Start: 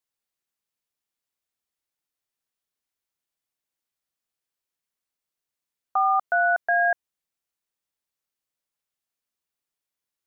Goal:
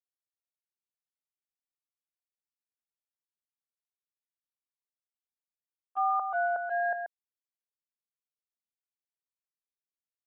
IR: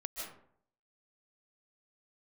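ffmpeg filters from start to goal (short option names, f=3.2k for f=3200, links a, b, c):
-filter_complex "[0:a]lowpass=1.2k,agate=range=-22dB:threshold=-23dB:ratio=16:detection=peak,asplit=2[a][b];[b]aecho=0:1:133:0.447[c];[a][c]amix=inputs=2:normalize=0,volume=-4dB"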